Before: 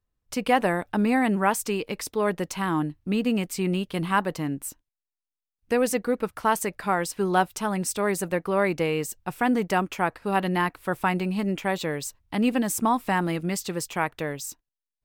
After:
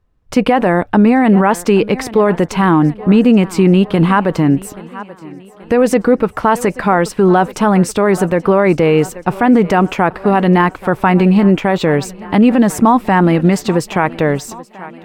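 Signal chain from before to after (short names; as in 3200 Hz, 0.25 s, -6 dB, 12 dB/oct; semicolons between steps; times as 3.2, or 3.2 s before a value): LPF 1400 Hz 6 dB/oct; on a send: thinning echo 0.83 s, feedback 57%, high-pass 160 Hz, level -22 dB; on the sum: maximiser +19.5 dB; gain -1 dB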